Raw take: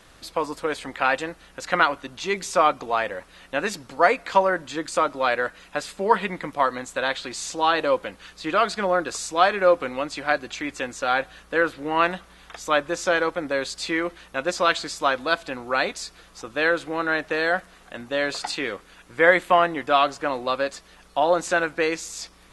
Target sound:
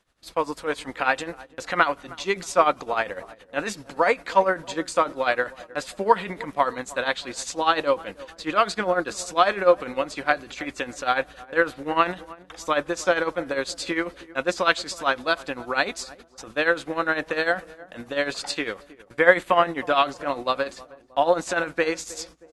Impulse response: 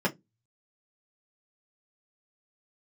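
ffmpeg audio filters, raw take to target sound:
-filter_complex "[0:a]tremolo=f=10:d=0.74,agate=range=-19dB:threshold=-48dB:ratio=16:detection=peak,asplit=2[a][b];[b]adelay=315,lowpass=f=900:p=1,volume=-18dB,asplit=2[c][d];[d]adelay=315,lowpass=f=900:p=1,volume=0.52,asplit=2[e][f];[f]adelay=315,lowpass=f=900:p=1,volume=0.52,asplit=2[g][h];[h]adelay=315,lowpass=f=900:p=1,volume=0.52[i];[a][c][e][g][i]amix=inputs=5:normalize=0,volume=2.5dB"

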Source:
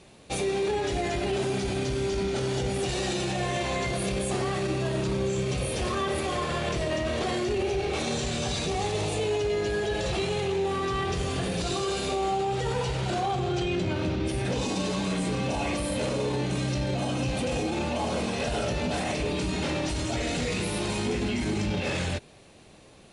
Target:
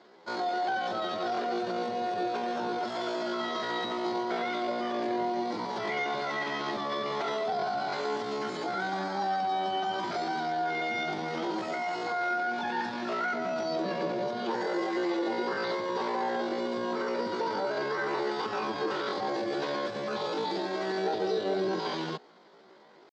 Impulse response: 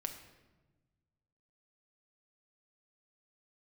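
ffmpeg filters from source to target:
-af "asetrate=80880,aresample=44100,atempo=0.545254,highpass=f=210:w=0.5412,highpass=f=210:w=1.3066,equalizer=f=260:t=q:w=4:g=-10,equalizer=f=390:t=q:w=4:g=4,equalizer=f=690:t=q:w=4:g=-3,equalizer=f=1.2k:t=q:w=4:g=-6,equalizer=f=2.7k:t=q:w=4:g=-7,lowpass=f=4k:w=0.5412,lowpass=f=4k:w=1.3066"

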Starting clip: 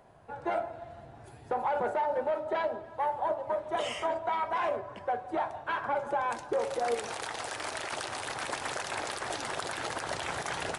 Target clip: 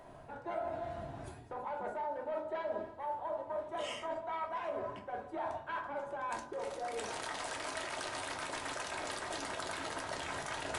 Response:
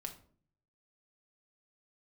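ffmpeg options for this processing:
-filter_complex "[0:a]bandreject=f=59.24:t=h:w=4,bandreject=f=118.48:t=h:w=4,bandreject=f=177.72:t=h:w=4,bandreject=f=236.96:t=h:w=4,bandreject=f=296.2:t=h:w=4,bandreject=f=355.44:t=h:w=4,bandreject=f=414.68:t=h:w=4,bandreject=f=473.92:t=h:w=4,areverse,acompressor=threshold=-41dB:ratio=12,areverse[a];[1:a]atrim=start_sample=2205,asetrate=66150,aresample=44100[b];[a][b]afir=irnorm=-1:irlink=0,volume=11dB"

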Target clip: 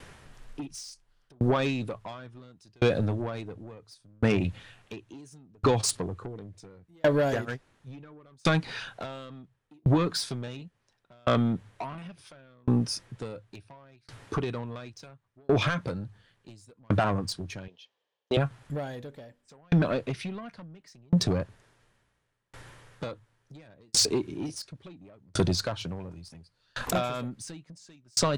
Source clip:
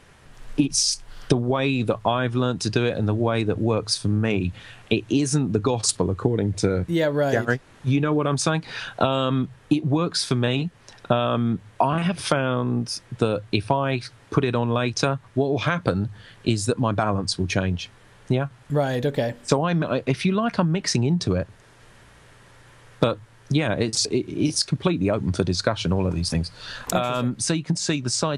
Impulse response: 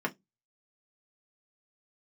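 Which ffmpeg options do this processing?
-filter_complex "[0:a]asettb=1/sr,asplit=3[a][b][c];[a]atrim=end=17.684[d];[b]atrim=start=17.68:end=18.37,asetpts=PTS-STARTPTS,afade=t=in:d=0.004:c=qsin,afade=t=out:st=0.686:d=0.004:c=qsin,highpass=500,equalizer=f=500:t=q:w=4:g=7,equalizer=f=1.4k:t=q:w=4:g=-10,equalizer=f=2.1k:t=q:w=4:g=-5,equalizer=f=3.2k:t=q:w=4:g=6,lowpass=f=6.3k:w=0.5412,lowpass=f=6.3k:w=1.3066[e];[c]atrim=start=18.366[f];[d][e]acrossfade=d=0.004:c1=hsin:c2=qsin[g];[g][f]acrossfade=d=0.004:c1=qsin:c2=hsin,asoftclip=type=tanh:threshold=-18.5dB,aeval=exprs='val(0)*pow(10,-39*if(lt(mod(0.71*n/s,1),2*abs(0.71)/1000),1-mod(0.71*n/s,1)/(2*abs(0.71)/1000),(mod(0.71*n/s,1)-2*abs(0.71)/1000)/(1-2*abs(0.71)/1000))/20)':c=same,volume=4.5dB"

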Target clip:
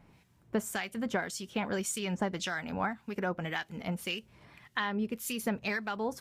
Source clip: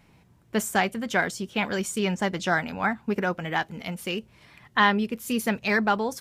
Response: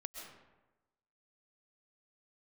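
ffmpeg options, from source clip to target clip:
-filter_complex "[0:a]acompressor=threshold=-26dB:ratio=5,acrossover=split=1500[a][b];[a]aeval=exprs='val(0)*(1-0.7/2+0.7/2*cos(2*PI*1.8*n/s))':c=same[c];[b]aeval=exprs='val(0)*(1-0.7/2-0.7/2*cos(2*PI*1.8*n/s))':c=same[d];[c][d]amix=inputs=2:normalize=0"

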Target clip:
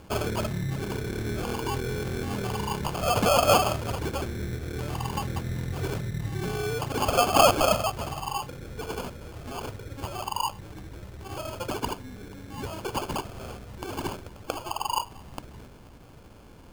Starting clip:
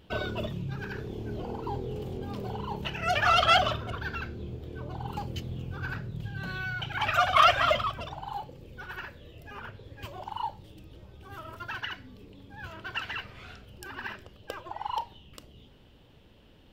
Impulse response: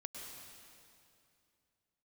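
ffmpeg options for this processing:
-filter_complex "[0:a]asplit=2[a][b];[b]acompressor=threshold=-37dB:ratio=6,volume=3dB[c];[a][c]amix=inputs=2:normalize=0,acrusher=samples=23:mix=1:aa=0.000001"

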